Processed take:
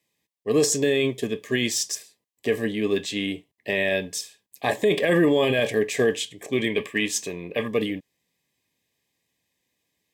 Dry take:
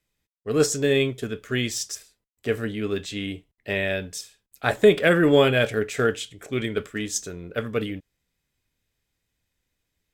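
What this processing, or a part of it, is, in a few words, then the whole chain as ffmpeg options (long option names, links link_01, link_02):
PA system with an anti-feedback notch: -filter_complex "[0:a]asettb=1/sr,asplit=3[link_01][link_02][link_03];[link_01]atrim=end=6.664[link_04];[link_02]atrim=start=6.66:end=7.68,asetpts=PTS-STARTPTS,afade=type=in:duration=0.004:curve=qsin,afade=type=out:start_time=1.016:duration=0.004:curve=qsin,equalizer=frequency=1000:width_type=o:width=0.67:gain=5,equalizer=frequency=2500:width_type=o:width=0.67:gain=9,equalizer=frequency=6300:width_type=o:width=0.67:gain=-4[link_05];[link_03]atrim=start=7.676[link_06];[link_04][link_05]acrossfade=duration=0.004:curve1=hsin:curve2=qsin[link_07];[link_07][link_06]acrossfade=duration=0.004:curve1=qsin:curve2=hsin,highpass=170,asuperstop=centerf=1400:order=12:qfactor=3.7,alimiter=limit=-16dB:level=0:latency=1:release=13,volume=4dB"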